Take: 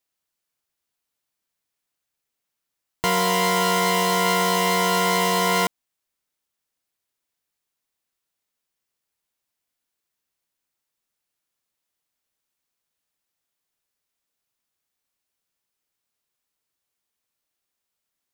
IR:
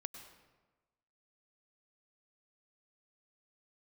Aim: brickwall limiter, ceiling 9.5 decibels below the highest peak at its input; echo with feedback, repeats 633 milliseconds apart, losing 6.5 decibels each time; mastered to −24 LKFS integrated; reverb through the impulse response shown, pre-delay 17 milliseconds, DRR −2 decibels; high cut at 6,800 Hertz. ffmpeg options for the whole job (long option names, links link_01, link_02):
-filter_complex "[0:a]lowpass=6800,alimiter=limit=-18dB:level=0:latency=1,aecho=1:1:633|1266|1899|2532|3165|3798:0.473|0.222|0.105|0.0491|0.0231|0.0109,asplit=2[link_01][link_02];[1:a]atrim=start_sample=2205,adelay=17[link_03];[link_02][link_03]afir=irnorm=-1:irlink=0,volume=5dB[link_04];[link_01][link_04]amix=inputs=2:normalize=0,volume=-1.5dB"